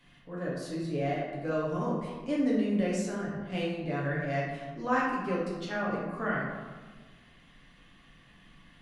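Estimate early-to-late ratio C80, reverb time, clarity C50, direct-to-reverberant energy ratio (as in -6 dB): 3.0 dB, 1.4 s, 0.5 dB, -6.0 dB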